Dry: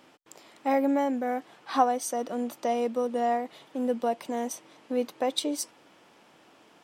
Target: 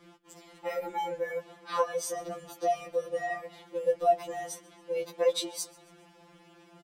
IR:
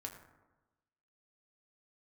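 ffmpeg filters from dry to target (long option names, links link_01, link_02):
-af "lowshelf=frequency=310:gain=10.5,aecho=1:1:137|274|411:0.0631|0.0309|0.0151,afftfilt=real='re*2.83*eq(mod(b,8),0)':imag='im*2.83*eq(mod(b,8),0)':win_size=2048:overlap=0.75"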